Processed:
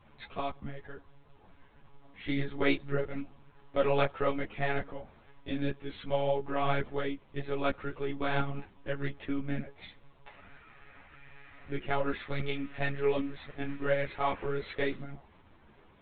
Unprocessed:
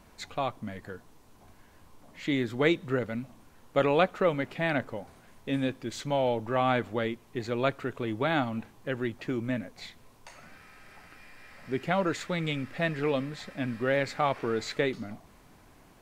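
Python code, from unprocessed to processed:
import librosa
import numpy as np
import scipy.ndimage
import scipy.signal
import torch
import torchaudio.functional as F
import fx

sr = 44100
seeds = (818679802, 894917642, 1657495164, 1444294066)

y = fx.lpc_monotone(x, sr, seeds[0], pitch_hz=140.0, order=16)
y = fx.ensemble(y, sr)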